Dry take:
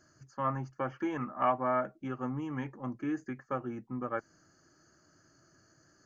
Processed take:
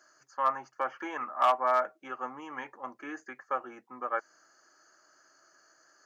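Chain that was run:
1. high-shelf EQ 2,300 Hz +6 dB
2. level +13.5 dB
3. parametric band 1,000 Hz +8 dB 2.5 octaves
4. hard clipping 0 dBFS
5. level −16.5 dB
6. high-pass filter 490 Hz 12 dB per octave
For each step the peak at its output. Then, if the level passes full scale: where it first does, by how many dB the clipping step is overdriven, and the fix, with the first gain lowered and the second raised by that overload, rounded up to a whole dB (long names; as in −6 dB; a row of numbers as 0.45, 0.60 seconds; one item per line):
−14.0, −0.5, +6.5, 0.0, −16.5, −12.5 dBFS
step 3, 6.5 dB
step 2 +6.5 dB, step 5 −9.5 dB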